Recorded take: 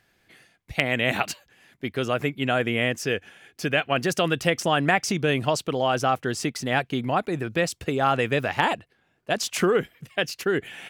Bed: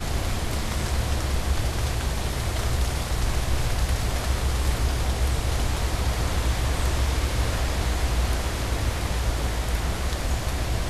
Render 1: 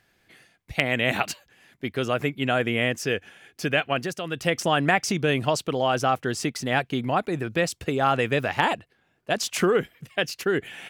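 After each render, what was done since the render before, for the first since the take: 3.86–4.56 dip -9.5 dB, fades 0.31 s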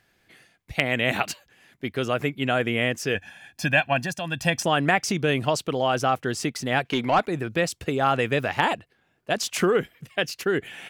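3.15–4.63 comb 1.2 ms, depth 83%; 6.85–7.26 overdrive pedal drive 15 dB, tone 4100 Hz, clips at -10.5 dBFS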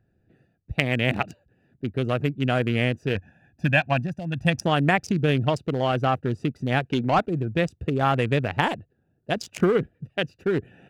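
Wiener smoothing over 41 samples; bell 92 Hz +7.5 dB 2.2 oct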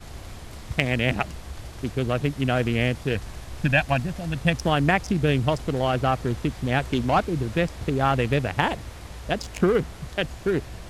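add bed -13 dB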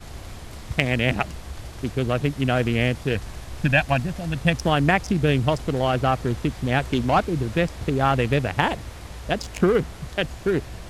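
gain +1.5 dB

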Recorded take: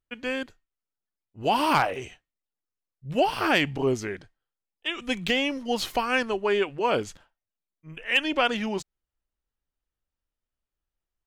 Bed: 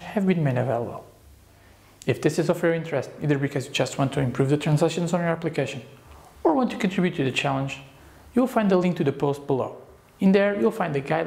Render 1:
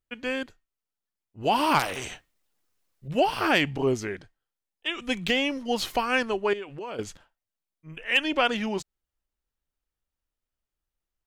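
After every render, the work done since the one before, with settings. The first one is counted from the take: 1.79–3.08 spectral compressor 2:1; 6.53–6.99 compressor 5:1, threshold -34 dBFS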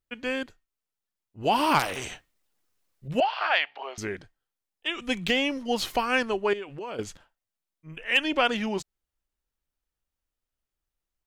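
3.2–3.98 elliptic band-pass 660–4100 Hz, stop band 80 dB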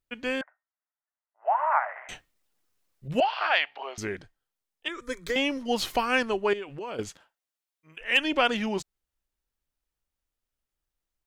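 0.41–2.09 Chebyshev band-pass 620–2000 Hz, order 4; 4.88–5.36 fixed phaser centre 760 Hz, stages 6; 7.08–8 HPF 260 Hz -> 1000 Hz 6 dB/oct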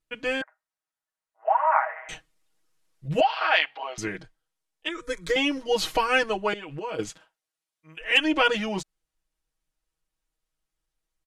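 LPF 12000 Hz 24 dB/oct; comb 6.3 ms, depth 93%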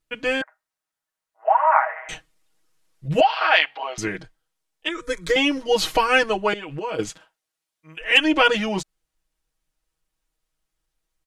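gain +4.5 dB

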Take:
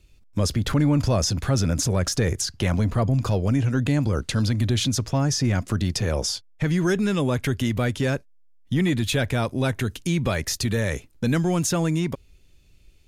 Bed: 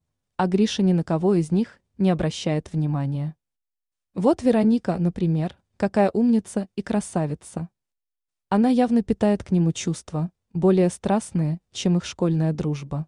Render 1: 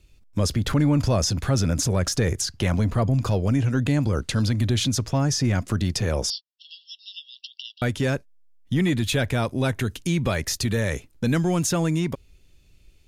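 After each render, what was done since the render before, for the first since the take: 6.3–7.82 brick-wall FIR band-pass 2700–5700 Hz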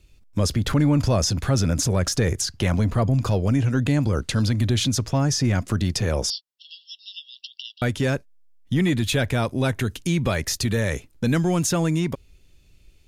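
gain +1 dB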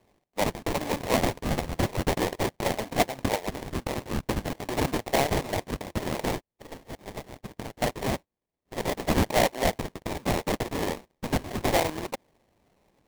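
LFO high-pass saw up 0.43 Hz 630–1500 Hz; sample-rate reducer 1400 Hz, jitter 20%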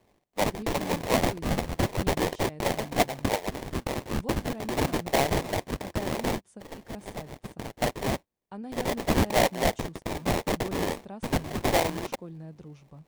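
add bed -20.5 dB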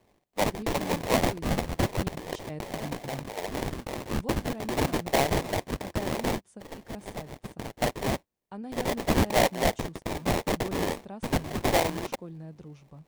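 2.08–4.05 negative-ratio compressor -36 dBFS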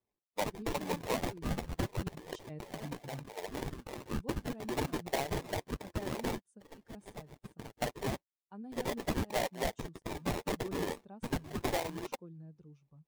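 per-bin expansion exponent 1.5; compressor 6:1, threshold -30 dBFS, peak gain reduction 10.5 dB

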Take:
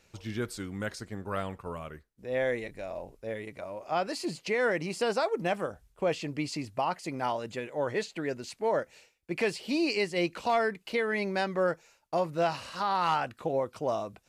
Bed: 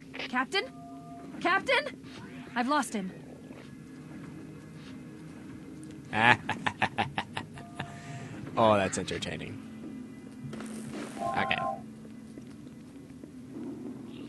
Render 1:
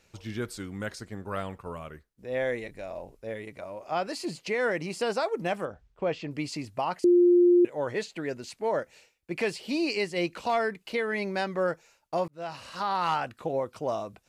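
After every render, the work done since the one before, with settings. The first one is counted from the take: 5.65–6.31 air absorption 140 m; 7.04–7.65 bleep 352 Hz -15.5 dBFS; 12.28–12.76 fade in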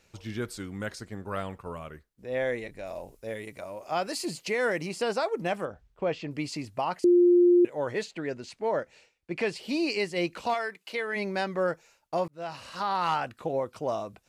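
2.85–4.87 high shelf 5000 Hz -> 8400 Hz +11.5 dB; 8.11–9.56 air absorption 52 m; 10.53–11.15 HPF 1200 Hz -> 440 Hz 6 dB/oct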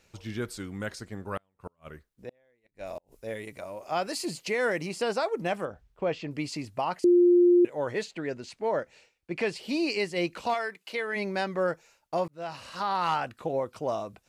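1.37–3.12 flipped gate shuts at -27 dBFS, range -38 dB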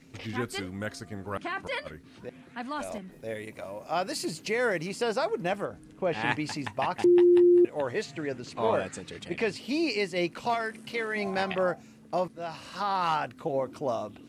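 add bed -7.5 dB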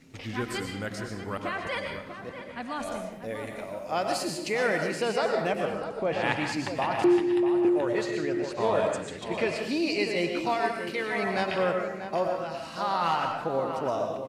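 outdoor echo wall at 110 m, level -9 dB; digital reverb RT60 0.67 s, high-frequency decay 0.85×, pre-delay 75 ms, DRR 3 dB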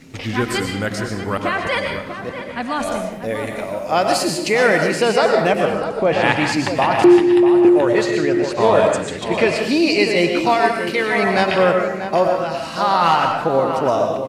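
gain +11.5 dB; limiter -2 dBFS, peak gain reduction 2.5 dB

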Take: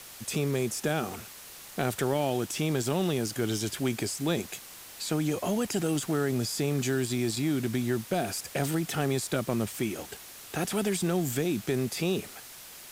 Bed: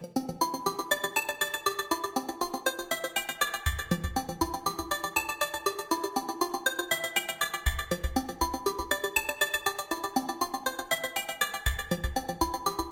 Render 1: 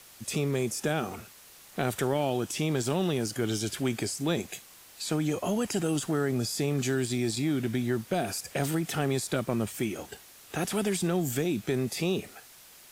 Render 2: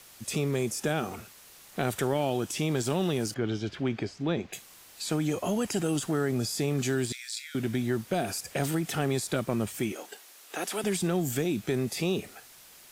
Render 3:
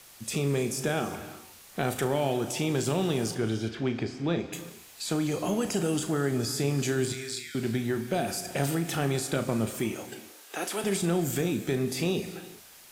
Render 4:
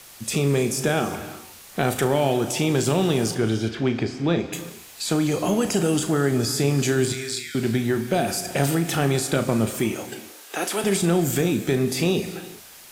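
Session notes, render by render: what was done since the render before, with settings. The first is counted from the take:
noise print and reduce 6 dB
3.34–4.53 air absorption 220 m; 7.12–7.55 rippled Chebyshev high-pass 1400 Hz, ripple 3 dB; 9.92–10.84 Bessel high-pass 380 Hz, order 4
flutter echo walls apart 6.1 m, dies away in 0.21 s; non-linear reverb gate 0.4 s flat, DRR 10.5 dB
gain +6.5 dB

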